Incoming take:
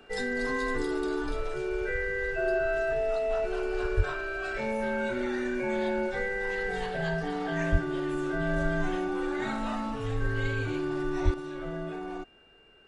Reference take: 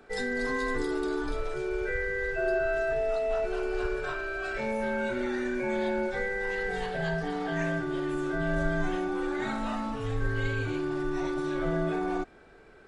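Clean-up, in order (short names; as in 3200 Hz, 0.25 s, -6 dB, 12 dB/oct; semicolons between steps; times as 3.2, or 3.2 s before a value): notch 2800 Hz, Q 30; 3.96–4.08 HPF 140 Hz 24 dB/oct; 7.71–7.83 HPF 140 Hz 24 dB/oct; 11.24–11.36 HPF 140 Hz 24 dB/oct; gain 0 dB, from 11.34 s +7 dB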